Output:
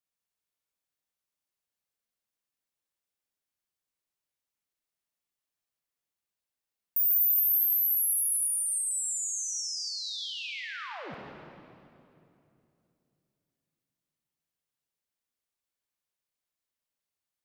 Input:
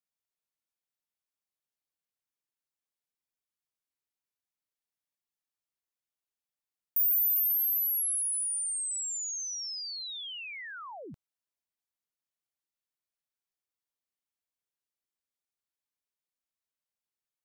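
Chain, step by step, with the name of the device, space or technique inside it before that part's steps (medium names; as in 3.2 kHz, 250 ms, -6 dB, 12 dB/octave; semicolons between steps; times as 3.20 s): stairwell (reverberation RT60 2.8 s, pre-delay 48 ms, DRR 0 dB)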